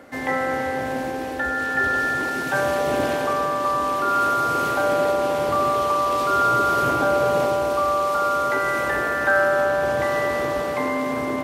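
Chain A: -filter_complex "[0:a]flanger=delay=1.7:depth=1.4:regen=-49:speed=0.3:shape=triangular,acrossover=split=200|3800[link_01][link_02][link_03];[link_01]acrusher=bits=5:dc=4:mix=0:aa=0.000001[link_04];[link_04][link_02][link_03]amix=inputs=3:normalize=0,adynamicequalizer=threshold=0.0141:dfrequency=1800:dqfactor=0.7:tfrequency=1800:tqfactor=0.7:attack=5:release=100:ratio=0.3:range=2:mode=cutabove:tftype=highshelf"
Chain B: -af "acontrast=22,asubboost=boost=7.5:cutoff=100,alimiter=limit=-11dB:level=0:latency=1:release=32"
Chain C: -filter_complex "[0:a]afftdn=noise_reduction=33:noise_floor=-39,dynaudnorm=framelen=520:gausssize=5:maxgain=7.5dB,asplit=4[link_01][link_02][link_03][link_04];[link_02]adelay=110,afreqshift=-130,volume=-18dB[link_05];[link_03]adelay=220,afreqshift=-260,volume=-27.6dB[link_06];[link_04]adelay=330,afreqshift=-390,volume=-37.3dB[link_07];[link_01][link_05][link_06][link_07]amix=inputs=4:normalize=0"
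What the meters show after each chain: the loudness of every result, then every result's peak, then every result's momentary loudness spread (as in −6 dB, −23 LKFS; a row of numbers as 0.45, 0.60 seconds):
−26.0, −19.0, −15.5 LKFS; −12.5, −11.0, −2.5 dBFS; 6, 3, 9 LU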